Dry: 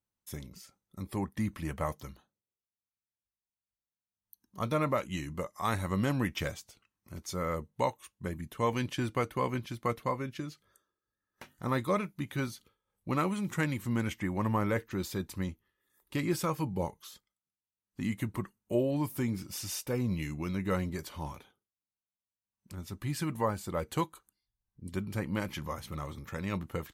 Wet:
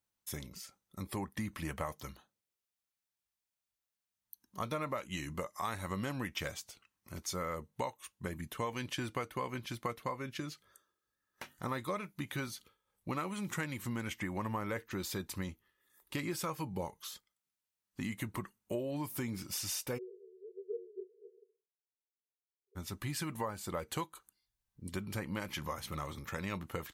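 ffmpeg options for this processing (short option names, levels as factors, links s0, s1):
-filter_complex "[0:a]asplit=3[s0][s1][s2];[s0]afade=t=out:st=19.97:d=0.02[s3];[s1]asuperpass=centerf=420:order=20:qfactor=3.8,afade=t=in:st=19.97:d=0.02,afade=t=out:st=22.75:d=0.02[s4];[s2]afade=t=in:st=22.75:d=0.02[s5];[s3][s4][s5]amix=inputs=3:normalize=0,lowshelf=f=500:g=-6.5,acompressor=threshold=0.0112:ratio=4,volume=1.58"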